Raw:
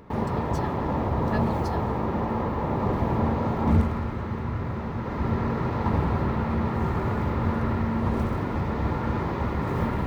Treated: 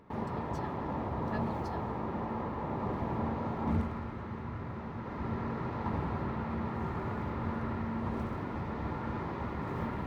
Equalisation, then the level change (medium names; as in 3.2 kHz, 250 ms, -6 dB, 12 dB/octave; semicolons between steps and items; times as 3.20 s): bass shelf 100 Hz -7.5 dB; peaking EQ 490 Hz -2.5 dB 0.6 oct; treble shelf 5.2 kHz -7 dB; -7.5 dB